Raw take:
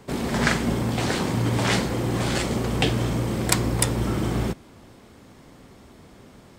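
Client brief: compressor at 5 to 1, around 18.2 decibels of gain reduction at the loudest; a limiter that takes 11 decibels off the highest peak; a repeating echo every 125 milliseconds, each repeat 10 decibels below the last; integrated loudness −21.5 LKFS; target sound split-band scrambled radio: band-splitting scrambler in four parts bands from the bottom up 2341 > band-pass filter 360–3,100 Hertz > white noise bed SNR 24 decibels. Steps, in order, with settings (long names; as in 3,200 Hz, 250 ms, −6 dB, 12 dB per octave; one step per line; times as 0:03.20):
downward compressor 5 to 1, threshold −37 dBFS
brickwall limiter −30 dBFS
repeating echo 125 ms, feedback 32%, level −10 dB
band-splitting scrambler in four parts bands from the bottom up 2341
band-pass filter 360–3,100 Hz
white noise bed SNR 24 dB
level +23.5 dB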